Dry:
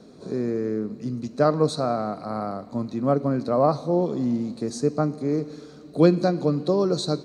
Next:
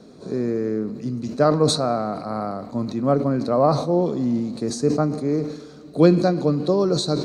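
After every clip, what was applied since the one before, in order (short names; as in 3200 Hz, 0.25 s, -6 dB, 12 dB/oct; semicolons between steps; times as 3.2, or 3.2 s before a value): sustainer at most 79 dB/s; gain +2 dB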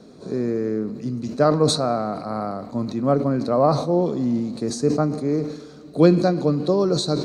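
nothing audible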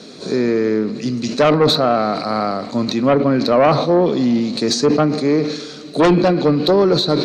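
weighting filter D; treble ducked by the level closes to 2200 Hz, closed at -15.5 dBFS; added harmonics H 5 -6 dB, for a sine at -3.5 dBFS; gain -2.5 dB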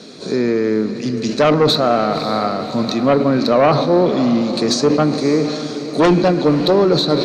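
diffused feedback echo 0.56 s, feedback 54%, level -12 dB; reverb RT60 4.5 s, pre-delay 6 ms, DRR 17.5 dB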